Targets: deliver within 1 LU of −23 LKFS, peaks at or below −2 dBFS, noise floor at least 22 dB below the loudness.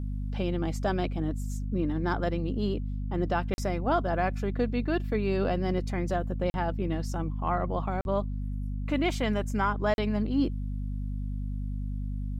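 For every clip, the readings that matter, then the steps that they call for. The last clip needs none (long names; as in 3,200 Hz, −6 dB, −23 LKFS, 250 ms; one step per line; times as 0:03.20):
number of dropouts 4; longest dropout 41 ms; mains hum 50 Hz; hum harmonics up to 250 Hz; level of the hum −30 dBFS; integrated loudness −30.0 LKFS; sample peak −14.5 dBFS; target loudness −23.0 LKFS
→ repair the gap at 0:03.54/0:06.50/0:08.01/0:09.94, 41 ms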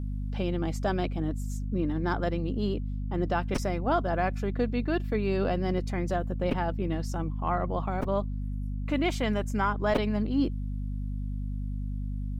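number of dropouts 0; mains hum 50 Hz; hum harmonics up to 250 Hz; level of the hum −30 dBFS
→ mains-hum notches 50/100/150/200/250 Hz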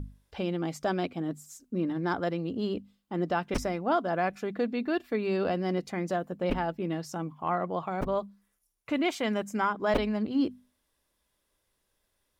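mains hum none found; integrated loudness −31.0 LKFS; sample peak −14.0 dBFS; target loudness −23.0 LKFS
→ level +8 dB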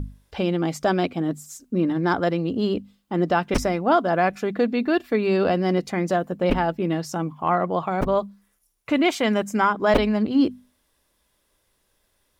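integrated loudness −23.0 LKFS; sample peak −6.0 dBFS; background noise floor −69 dBFS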